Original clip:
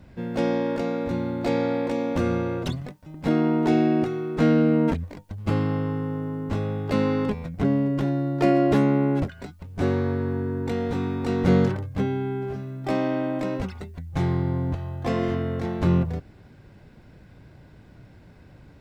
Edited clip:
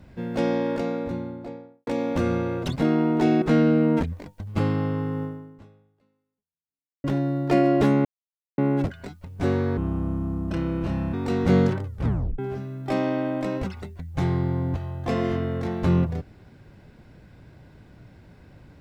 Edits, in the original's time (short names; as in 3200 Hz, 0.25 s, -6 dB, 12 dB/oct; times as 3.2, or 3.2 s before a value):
0.71–1.87 studio fade out
2.76–3.22 cut
3.88–4.33 cut
6.14–7.95 fade out exponential
8.96 insert silence 0.53 s
10.15–11.12 speed 71%
11.83 tape stop 0.54 s